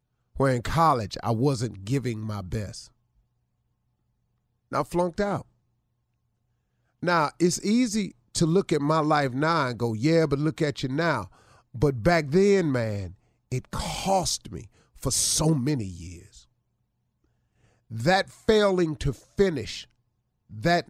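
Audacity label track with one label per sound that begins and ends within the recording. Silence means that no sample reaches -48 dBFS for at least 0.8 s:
4.720000	5.420000	sound
7.030000	16.430000	sound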